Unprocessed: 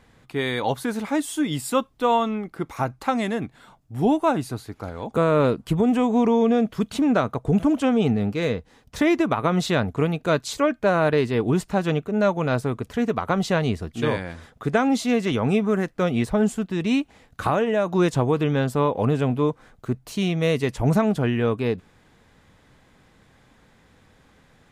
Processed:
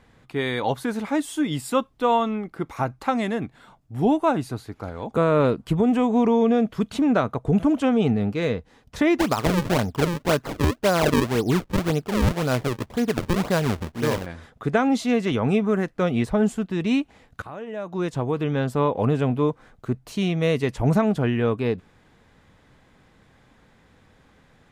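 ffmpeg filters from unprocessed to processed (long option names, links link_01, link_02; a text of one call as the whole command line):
ffmpeg -i in.wav -filter_complex "[0:a]asplit=3[link_01][link_02][link_03];[link_01]afade=type=out:start_time=9.18:duration=0.02[link_04];[link_02]acrusher=samples=36:mix=1:aa=0.000001:lfo=1:lforange=57.6:lforate=1.9,afade=type=in:start_time=9.18:duration=0.02,afade=type=out:start_time=14.25:duration=0.02[link_05];[link_03]afade=type=in:start_time=14.25:duration=0.02[link_06];[link_04][link_05][link_06]amix=inputs=3:normalize=0,asplit=2[link_07][link_08];[link_07]atrim=end=17.42,asetpts=PTS-STARTPTS,afade=type=out:start_time=17.416:duration=0.004:curve=hsin:silence=0.1[link_09];[link_08]atrim=start=17.42,asetpts=PTS-STARTPTS,afade=type=in:duration=1.46:silence=0.1[link_10];[link_09][link_10]concat=n=2:v=0:a=1,highshelf=frequency=5100:gain=-5" out.wav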